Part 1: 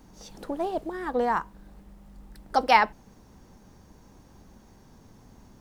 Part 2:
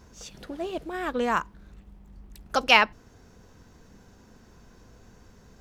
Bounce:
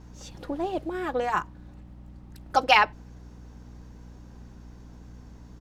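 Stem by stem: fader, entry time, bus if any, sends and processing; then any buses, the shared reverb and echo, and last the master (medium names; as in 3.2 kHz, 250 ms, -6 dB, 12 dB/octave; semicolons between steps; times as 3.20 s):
-1.5 dB, 0.00 s, no send, low-pass 5.2 kHz 12 dB/octave; hum 60 Hz, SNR 14 dB
-4.0 dB, 4.2 ms, polarity flipped, no send, none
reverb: none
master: none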